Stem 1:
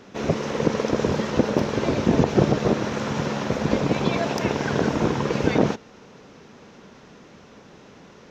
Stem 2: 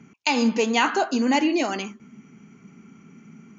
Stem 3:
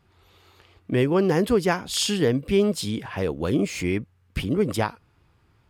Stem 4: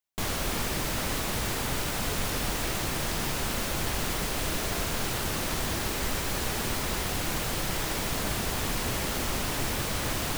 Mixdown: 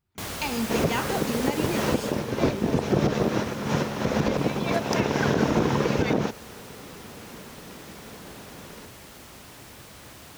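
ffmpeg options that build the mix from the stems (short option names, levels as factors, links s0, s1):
-filter_complex "[0:a]adelay=550,volume=1.33[s0];[1:a]adelay=150,volume=0.376[s1];[2:a]bass=f=250:g=4,treble=f=4000:g=5,volume=0.106,asplit=2[s2][s3];[3:a]highpass=63,volume=0.708,afade=t=out:st=1.81:d=0.45:silence=0.251189[s4];[s3]apad=whole_len=390714[s5];[s0][s5]sidechaincompress=threshold=0.00631:ratio=8:attack=6.7:release=112[s6];[s6][s1][s2][s4]amix=inputs=4:normalize=0,alimiter=limit=0.266:level=0:latency=1:release=109"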